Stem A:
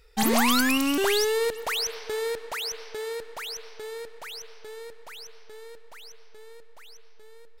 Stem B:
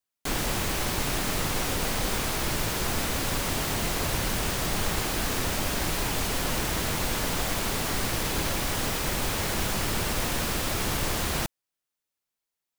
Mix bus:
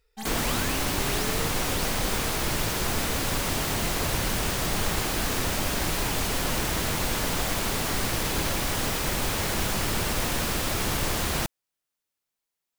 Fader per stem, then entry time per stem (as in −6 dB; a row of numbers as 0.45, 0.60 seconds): −13.0, +1.0 decibels; 0.00, 0.00 seconds